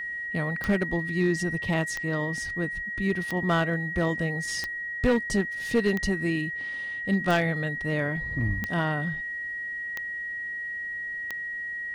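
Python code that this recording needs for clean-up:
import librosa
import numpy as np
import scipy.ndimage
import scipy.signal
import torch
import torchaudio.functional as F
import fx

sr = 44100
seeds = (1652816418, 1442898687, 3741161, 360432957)

y = fx.fix_declip(x, sr, threshold_db=-16.0)
y = fx.fix_declick_ar(y, sr, threshold=10.0)
y = fx.notch(y, sr, hz=1900.0, q=30.0)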